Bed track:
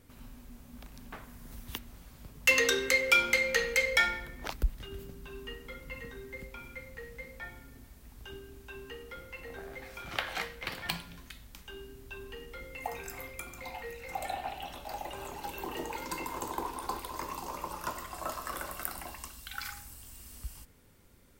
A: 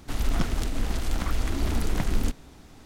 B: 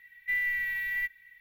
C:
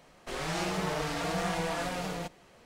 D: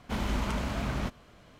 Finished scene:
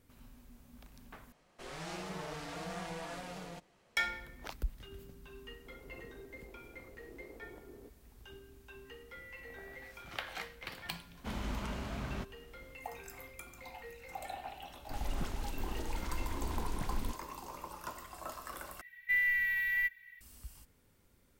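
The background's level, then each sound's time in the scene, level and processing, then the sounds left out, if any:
bed track −7 dB
0:01.32: overwrite with C −10.5 dB
0:05.58: mix in A −10 dB + four-pole ladder band-pass 440 Hz, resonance 65%
0:08.85: mix in B −17.5 dB + downward compressor, threshold −34 dBFS
0:11.15: mix in D −8 dB
0:14.81: mix in A −12 dB + all-pass dispersion highs, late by 42 ms, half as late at 1,500 Hz
0:18.81: overwrite with B −0.5 dB

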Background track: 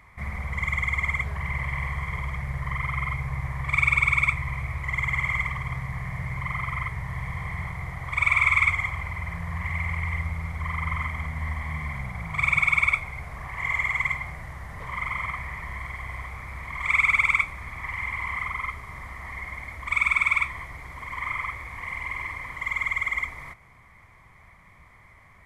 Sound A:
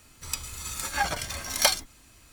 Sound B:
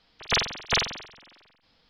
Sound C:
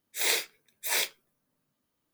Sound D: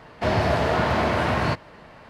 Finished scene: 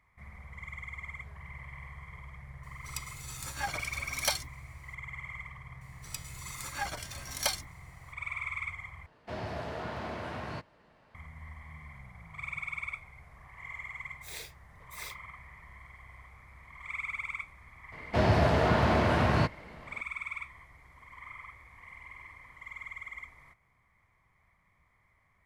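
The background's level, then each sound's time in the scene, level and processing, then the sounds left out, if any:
background track −16.5 dB
0:02.63: mix in A −8.5 dB
0:05.81: mix in A −9 dB
0:09.06: overwrite with D −16.5 dB
0:14.07: mix in C −17 dB
0:17.92: mix in D −5 dB + low-shelf EQ 250 Hz +5 dB
not used: B

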